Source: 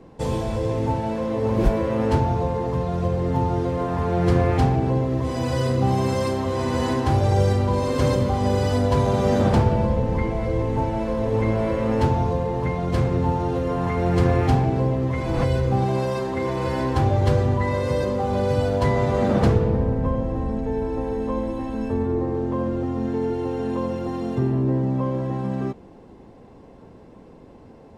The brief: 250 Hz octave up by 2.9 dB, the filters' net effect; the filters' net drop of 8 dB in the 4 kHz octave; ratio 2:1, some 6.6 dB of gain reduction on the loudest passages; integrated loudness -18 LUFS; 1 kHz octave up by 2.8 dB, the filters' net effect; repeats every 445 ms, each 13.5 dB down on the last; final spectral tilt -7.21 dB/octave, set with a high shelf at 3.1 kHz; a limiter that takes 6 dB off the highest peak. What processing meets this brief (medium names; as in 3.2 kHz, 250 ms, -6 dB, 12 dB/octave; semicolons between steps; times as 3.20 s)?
peaking EQ 250 Hz +3.5 dB; peaking EQ 1 kHz +4 dB; treble shelf 3.1 kHz -4.5 dB; peaking EQ 4 kHz -7.5 dB; compression 2:1, threshold -24 dBFS; peak limiter -17.5 dBFS; feedback delay 445 ms, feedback 21%, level -13.5 dB; trim +8.5 dB